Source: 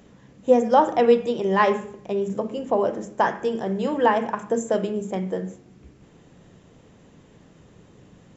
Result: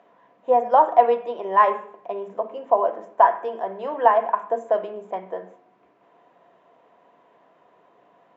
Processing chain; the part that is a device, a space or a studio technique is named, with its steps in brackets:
tin-can telephone (band-pass filter 510–2,200 Hz; hollow resonant body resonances 700/980 Hz, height 14 dB, ringing for 40 ms)
level −2 dB

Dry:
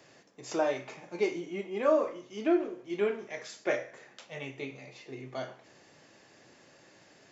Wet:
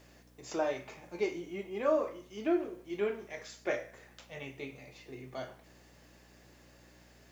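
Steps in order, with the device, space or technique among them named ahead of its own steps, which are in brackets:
video cassette with head-switching buzz (hum with harmonics 60 Hz, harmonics 5, −59 dBFS −4 dB per octave; white noise bed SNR 36 dB)
level −3.5 dB

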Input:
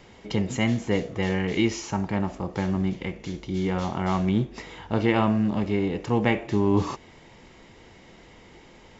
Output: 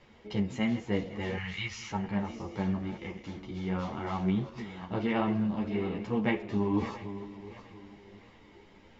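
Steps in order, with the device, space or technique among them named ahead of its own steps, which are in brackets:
feedback delay that plays each chunk backwards 346 ms, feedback 58%, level −12 dB
0:01.37–0:01.91: drawn EQ curve 140 Hz 0 dB, 290 Hz −26 dB, 1,300 Hz +3 dB
string-machine ensemble chorus (string-ensemble chorus; low-pass filter 4,900 Hz 12 dB per octave)
level −4.5 dB

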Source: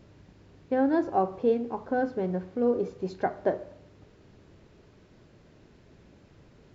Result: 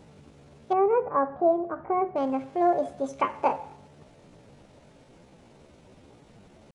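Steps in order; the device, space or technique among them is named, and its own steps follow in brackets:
chipmunk voice (pitch shifter +6.5 semitones)
0:00.73–0:02.16: low-pass filter 1,100 Hz 12 dB per octave
level +2.5 dB

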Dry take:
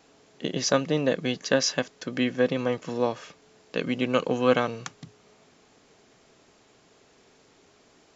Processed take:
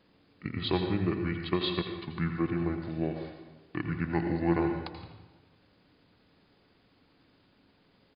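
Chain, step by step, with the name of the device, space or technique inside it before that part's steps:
monster voice (pitch shifter −7 semitones; low-shelf EQ 160 Hz +4.5 dB; single-tap delay 82 ms −13 dB; convolution reverb RT60 1.1 s, pre-delay 80 ms, DRR 6 dB)
level −7.5 dB

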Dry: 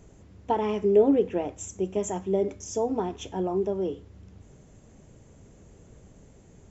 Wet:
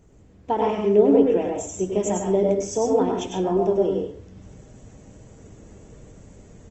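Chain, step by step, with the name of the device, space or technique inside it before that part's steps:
speakerphone in a meeting room (convolution reverb RT60 0.45 s, pre-delay 95 ms, DRR 1 dB; far-end echo of a speakerphone 130 ms, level −28 dB; automatic gain control gain up to 6.5 dB; level −2.5 dB; Opus 20 kbit/s 48,000 Hz)

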